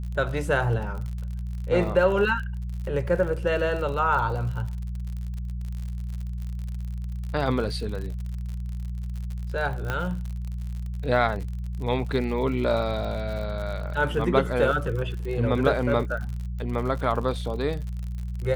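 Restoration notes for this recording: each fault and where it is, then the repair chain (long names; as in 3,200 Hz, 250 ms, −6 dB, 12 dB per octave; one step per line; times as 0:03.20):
surface crackle 58 per second −33 dBFS
mains hum 60 Hz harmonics 3 −31 dBFS
0:09.90: click −14 dBFS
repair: click removal
hum removal 60 Hz, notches 3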